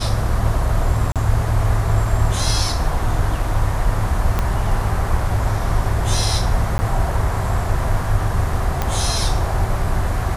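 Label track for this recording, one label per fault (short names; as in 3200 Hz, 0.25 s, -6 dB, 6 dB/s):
1.120000	1.160000	gap 37 ms
4.390000	4.390000	pop -6 dBFS
6.780000	6.790000	gap 10 ms
8.820000	8.820000	pop -6 dBFS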